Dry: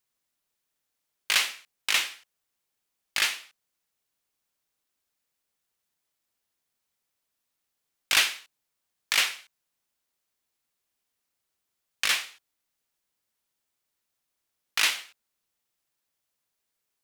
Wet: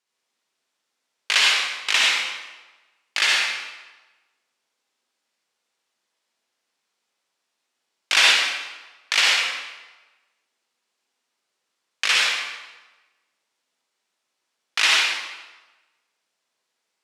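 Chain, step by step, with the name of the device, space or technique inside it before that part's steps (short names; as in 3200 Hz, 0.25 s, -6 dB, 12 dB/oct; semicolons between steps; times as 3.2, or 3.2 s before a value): supermarket ceiling speaker (BPF 280–6700 Hz; reverb RT60 1.2 s, pre-delay 56 ms, DRR -4 dB); gain +3.5 dB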